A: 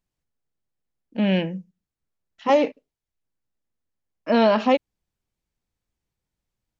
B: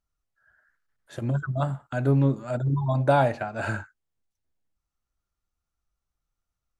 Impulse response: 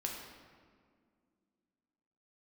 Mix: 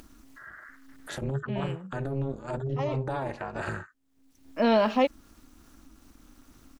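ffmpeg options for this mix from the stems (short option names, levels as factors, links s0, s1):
-filter_complex "[0:a]adelay=300,volume=0.596[s0];[1:a]acompressor=mode=upward:threshold=0.0708:ratio=2.5,alimiter=limit=0.106:level=0:latency=1:release=35,tremolo=f=270:d=0.974,volume=0.944,asplit=2[s1][s2];[s2]apad=whole_len=312730[s3];[s0][s3]sidechaincompress=threshold=0.00891:ratio=3:attack=16:release=432[s4];[s4][s1]amix=inputs=2:normalize=0"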